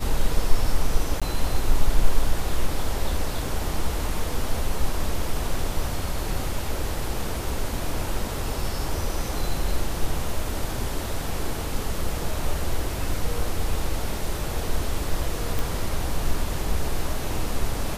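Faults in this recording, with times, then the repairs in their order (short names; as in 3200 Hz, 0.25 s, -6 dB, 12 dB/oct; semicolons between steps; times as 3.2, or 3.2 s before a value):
1.2–1.22 gap 16 ms
15.59 pop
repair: de-click; interpolate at 1.2, 16 ms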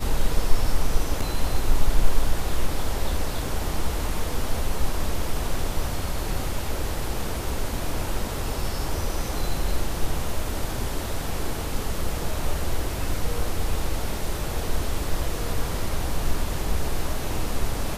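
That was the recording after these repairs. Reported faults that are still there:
none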